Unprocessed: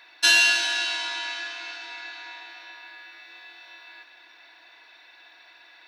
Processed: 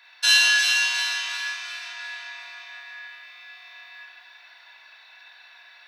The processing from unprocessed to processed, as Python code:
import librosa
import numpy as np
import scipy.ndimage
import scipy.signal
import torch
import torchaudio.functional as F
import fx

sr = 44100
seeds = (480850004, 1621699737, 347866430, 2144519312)

y = scipy.signal.sosfilt(scipy.signal.butter(2, 860.0, 'highpass', fs=sr, output='sos'), x)
y = fx.echo_alternate(y, sr, ms=177, hz=1700.0, feedback_pct=66, wet_db=-2)
y = fx.rev_schroeder(y, sr, rt60_s=0.32, comb_ms=29, drr_db=-2.0)
y = y * 10.0 ** (-3.0 / 20.0)